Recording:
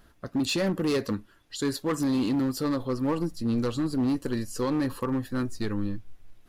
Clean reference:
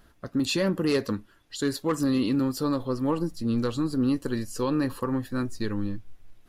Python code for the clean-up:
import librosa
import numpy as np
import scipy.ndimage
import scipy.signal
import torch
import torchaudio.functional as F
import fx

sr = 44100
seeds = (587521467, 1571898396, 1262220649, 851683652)

y = fx.fix_declip(x, sr, threshold_db=-21.5)